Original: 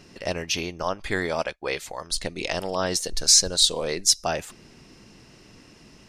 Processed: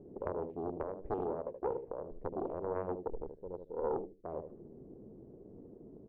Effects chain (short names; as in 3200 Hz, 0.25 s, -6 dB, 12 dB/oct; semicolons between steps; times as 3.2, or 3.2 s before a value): low shelf 140 Hz -4 dB; compressor 16:1, threshold -30 dBFS, peak gain reduction 19 dB; ladder low-pass 520 Hz, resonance 50%; feedback echo 76 ms, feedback 21%, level -7.5 dB; Doppler distortion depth 0.98 ms; gain +6 dB